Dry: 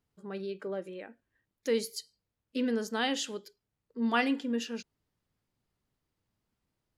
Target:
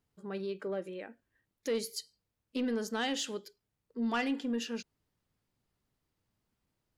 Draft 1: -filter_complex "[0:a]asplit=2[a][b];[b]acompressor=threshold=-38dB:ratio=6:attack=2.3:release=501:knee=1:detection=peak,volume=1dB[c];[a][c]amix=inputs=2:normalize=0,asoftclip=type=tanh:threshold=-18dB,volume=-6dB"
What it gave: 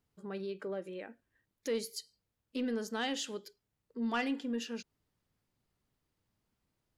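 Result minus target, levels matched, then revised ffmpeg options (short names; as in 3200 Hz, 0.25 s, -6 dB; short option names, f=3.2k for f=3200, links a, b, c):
compressor: peak gain reduction +8 dB
-filter_complex "[0:a]asplit=2[a][b];[b]acompressor=threshold=-28.5dB:ratio=6:attack=2.3:release=501:knee=1:detection=peak,volume=1dB[c];[a][c]amix=inputs=2:normalize=0,asoftclip=type=tanh:threshold=-18dB,volume=-6dB"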